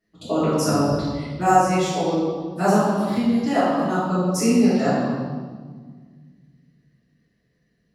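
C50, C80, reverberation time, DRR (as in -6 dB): -2.0 dB, 1.0 dB, 1.6 s, -15.0 dB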